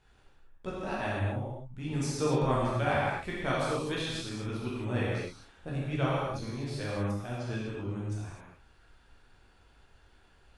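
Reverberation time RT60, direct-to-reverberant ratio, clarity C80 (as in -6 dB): no single decay rate, -7.0 dB, 0.0 dB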